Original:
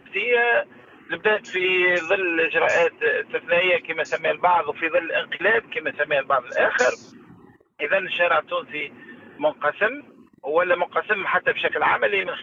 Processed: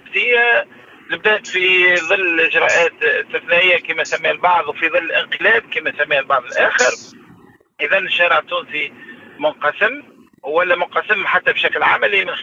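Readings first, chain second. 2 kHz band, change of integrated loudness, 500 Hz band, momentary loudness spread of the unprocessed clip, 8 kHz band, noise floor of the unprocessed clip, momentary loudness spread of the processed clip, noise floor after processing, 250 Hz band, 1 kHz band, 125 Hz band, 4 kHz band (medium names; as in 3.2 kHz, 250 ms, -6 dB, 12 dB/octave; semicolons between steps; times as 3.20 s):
+7.5 dB, +6.5 dB, +3.5 dB, 8 LU, no reading, -51 dBFS, 10 LU, -47 dBFS, +3.5 dB, +5.0 dB, +3.0 dB, +10.0 dB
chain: treble shelf 2.1 kHz +10 dB; trim +3 dB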